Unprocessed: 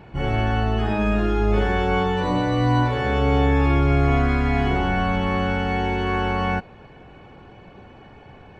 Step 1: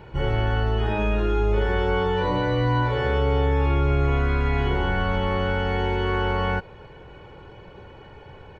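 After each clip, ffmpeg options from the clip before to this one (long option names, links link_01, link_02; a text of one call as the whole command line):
ffmpeg -i in.wav -filter_complex "[0:a]acrossover=split=4500[link_01][link_02];[link_02]acompressor=threshold=-56dB:ratio=4:attack=1:release=60[link_03];[link_01][link_03]amix=inputs=2:normalize=0,aecho=1:1:2.1:0.52,acompressor=threshold=-20dB:ratio=2" out.wav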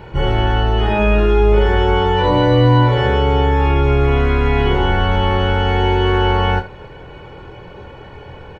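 ffmpeg -i in.wav -af "aecho=1:1:24|75:0.447|0.168,volume=7.5dB" out.wav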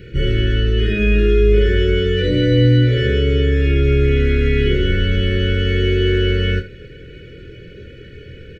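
ffmpeg -i in.wav -af "asuperstop=centerf=880:order=8:qfactor=0.83" out.wav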